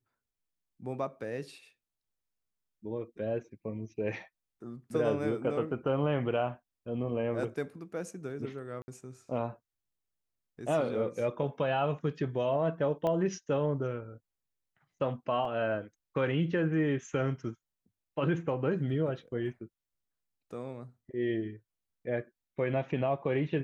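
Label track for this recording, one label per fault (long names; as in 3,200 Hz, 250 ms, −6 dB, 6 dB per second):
8.820000	8.880000	drop-out 60 ms
13.070000	13.070000	click −21 dBFS
15.450000	15.450000	drop-out 2.8 ms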